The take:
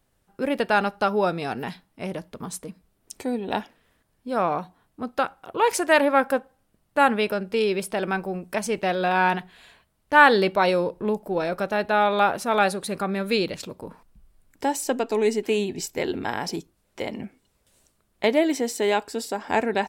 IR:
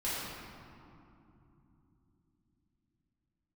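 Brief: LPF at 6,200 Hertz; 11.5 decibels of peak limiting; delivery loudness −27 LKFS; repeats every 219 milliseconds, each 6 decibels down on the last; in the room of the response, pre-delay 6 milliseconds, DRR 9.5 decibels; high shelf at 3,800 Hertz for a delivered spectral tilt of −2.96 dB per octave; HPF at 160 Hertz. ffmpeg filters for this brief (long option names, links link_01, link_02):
-filter_complex "[0:a]highpass=160,lowpass=6200,highshelf=frequency=3800:gain=3.5,alimiter=limit=-12dB:level=0:latency=1,aecho=1:1:219|438|657|876|1095|1314:0.501|0.251|0.125|0.0626|0.0313|0.0157,asplit=2[link_01][link_02];[1:a]atrim=start_sample=2205,adelay=6[link_03];[link_02][link_03]afir=irnorm=-1:irlink=0,volume=-16dB[link_04];[link_01][link_04]amix=inputs=2:normalize=0,volume=-2dB"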